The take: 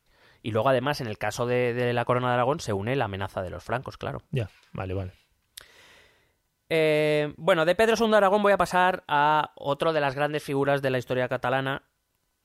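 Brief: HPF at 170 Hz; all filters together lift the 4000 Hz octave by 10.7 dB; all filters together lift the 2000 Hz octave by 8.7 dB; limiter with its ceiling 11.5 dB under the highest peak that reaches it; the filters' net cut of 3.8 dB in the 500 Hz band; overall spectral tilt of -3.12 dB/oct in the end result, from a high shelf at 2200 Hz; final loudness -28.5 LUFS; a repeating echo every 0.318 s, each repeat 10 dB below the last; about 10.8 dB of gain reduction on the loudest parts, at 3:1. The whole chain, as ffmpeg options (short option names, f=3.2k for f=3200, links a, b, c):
-af "highpass=170,equalizer=f=500:t=o:g=-5.5,equalizer=f=2k:t=o:g=8.5,highshelf=f=2.2k:g=3.5,equalizer=f=4k:t=o:g=7.5,acompressor=threshold=-28dB:ratio=3,alimiter=limit=-23.5dB:level=0:latency=1,aecho=1:1:318|636|954|1272:0.316|0.101|0.0324|0.0104,volume=7.5dB"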